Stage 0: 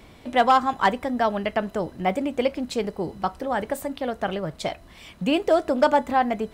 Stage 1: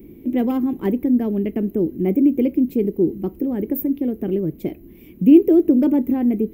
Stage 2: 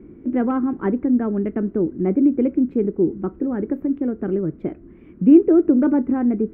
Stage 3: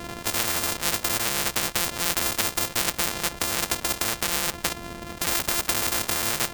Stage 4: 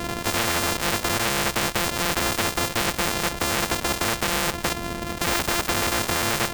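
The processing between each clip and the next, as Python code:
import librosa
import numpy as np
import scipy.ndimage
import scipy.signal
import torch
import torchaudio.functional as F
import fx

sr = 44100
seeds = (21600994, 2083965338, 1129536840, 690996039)

y1 = fx.curve_eq(x, sr, hz=(110.0, 350.0, 640.0, 1400.0, 2300.0, 4200.0, 6000.0, 9000.0, 14000.0), db=(0, 14, -15, -23, -10, -24, -19, -17, 15))
y1 = y1 * librosa.db_to_amplitude(1.5)
y2 = fx.lowpass_res(y1, sr, hz=1400.0, q=5.0)
y2 = y2 * librosa.db_to_amplitude(-1.0)
y3 = np.r_[np.sort(y2[:len(y2) // 128 * 128].reshape(-1, 128), axis=1).ravel(), y2[len(y2) // 128 * 128:]]
y3 = fx.spectral_comp(y3, sr, ratio=10.0)
y4 = 10.0 ** (-19.0 / 20.0) * np.tanh(y3 / 10.0 ** (-19.0 / 20.0))
y4 = y4 * librosa.db_to_amplitude(7.0)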